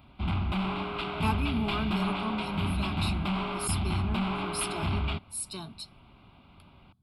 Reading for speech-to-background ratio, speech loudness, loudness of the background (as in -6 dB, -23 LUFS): -4.5 dB, -36.0 LUFS, -31.5 LUFS